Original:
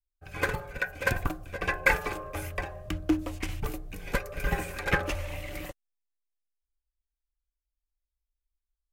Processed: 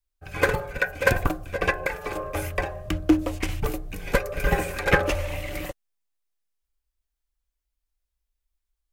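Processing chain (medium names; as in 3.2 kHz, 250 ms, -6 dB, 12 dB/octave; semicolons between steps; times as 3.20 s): dynamic bell 510 Hz, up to +5 dB, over -43 dBFS, Q 1.6; 1.70–2.16 s: compression 16:1, threshold -30 dBFS, peak gain reduction 15.5 dB; trim +5.5 dB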